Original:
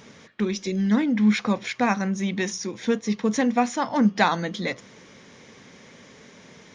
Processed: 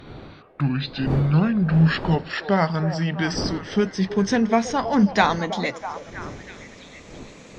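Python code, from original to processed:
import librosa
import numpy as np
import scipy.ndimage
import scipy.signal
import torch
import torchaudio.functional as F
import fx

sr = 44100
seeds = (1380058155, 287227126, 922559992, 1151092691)

y = fx.speed_glide(x, sr, from_pct=64, to_pct=114)
y = fx.dmg_wind(y, sr, seeds[0], corner_hz=370.0, level_db=-38.0)
y = fx.echo_stepped(y, sr, ms=324, hz=560.0, octaves=0.7, feedback_pct=70, wet_db=-8)
y = F.gain(torch.from_numpy(y), 2.0).numpy()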